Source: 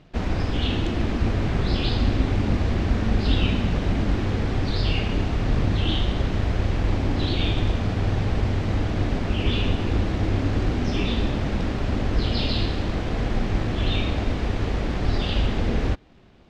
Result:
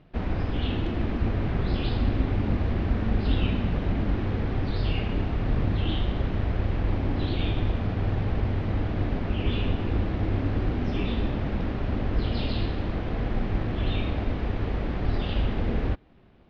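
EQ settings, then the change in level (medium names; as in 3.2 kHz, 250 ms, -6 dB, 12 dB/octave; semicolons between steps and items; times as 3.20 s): distance through air 230 m; -3.0 dB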